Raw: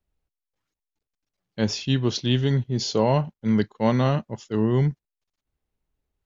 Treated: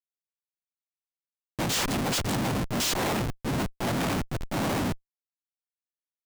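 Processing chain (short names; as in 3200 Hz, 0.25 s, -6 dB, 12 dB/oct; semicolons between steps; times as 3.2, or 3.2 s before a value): noise vocoder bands 4; Schmitt trigger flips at -36 dBFS; limiter -26 dBFS, peak gain reduction 6.5 dB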